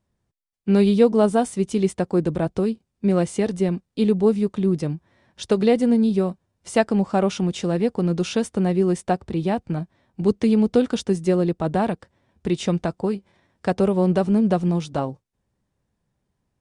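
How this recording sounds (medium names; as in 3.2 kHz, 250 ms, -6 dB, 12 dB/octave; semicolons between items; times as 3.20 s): noise floor -77 dBFS; spectral tilt -7.0 dB/octave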